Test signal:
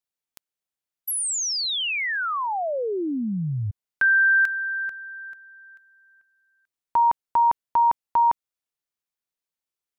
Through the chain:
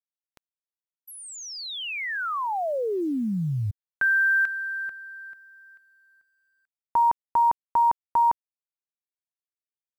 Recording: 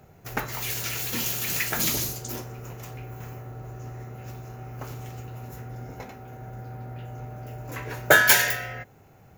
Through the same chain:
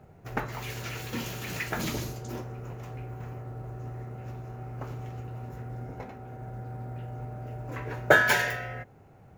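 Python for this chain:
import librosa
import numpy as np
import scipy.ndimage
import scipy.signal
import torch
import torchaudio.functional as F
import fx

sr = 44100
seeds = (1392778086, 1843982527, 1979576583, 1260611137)

y = fx.lowpass(x, sr, hz=1500.0, slope=6)
y = fx.quant_companded(y, sr, bits=8)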